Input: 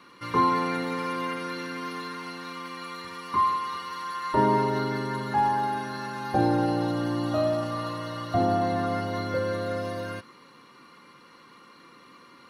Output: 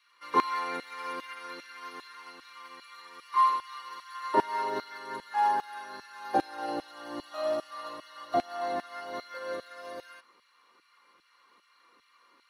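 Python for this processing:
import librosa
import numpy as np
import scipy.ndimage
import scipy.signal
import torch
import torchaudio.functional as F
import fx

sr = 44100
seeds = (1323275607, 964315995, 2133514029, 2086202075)

y = fx.filter_lfo_highpass(x, sr, shape='saw_down', hz=2.5, low_hz=330.0, high_hz=2400.0, q=0.86)
y = fx.upward_expand(y, sr, threshold_db=-41.0, expansion=1.5)
y = F.gain(torch.from_numpy(y), 1.0).numpy()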